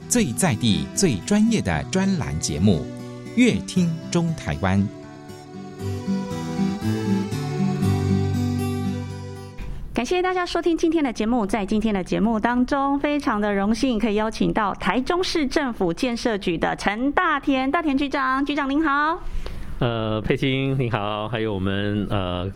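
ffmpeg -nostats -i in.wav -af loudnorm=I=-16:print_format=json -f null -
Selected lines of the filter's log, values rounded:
"input_i" : "-22.6",
"input_tp" : "-4.0",
"input_lra" : "3.3",
"input_thresh" : "-32.9",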